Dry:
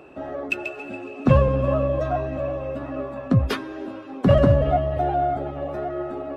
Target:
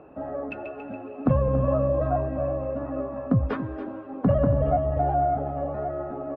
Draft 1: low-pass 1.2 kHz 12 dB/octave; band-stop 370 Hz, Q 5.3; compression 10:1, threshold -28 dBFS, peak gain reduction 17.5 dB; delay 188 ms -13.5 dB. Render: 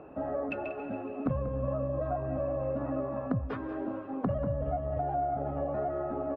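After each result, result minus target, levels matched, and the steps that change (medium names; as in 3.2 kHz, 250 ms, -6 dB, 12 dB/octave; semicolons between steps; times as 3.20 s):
compression: peak gain reduction +10.5 dB; echo 93 ms early
change: compression 10:1, threshold -16.5 dBFS, peak gain reduction 7 dB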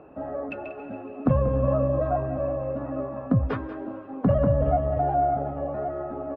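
echo 93 ms early
change: delay 281 ms -13.5 dB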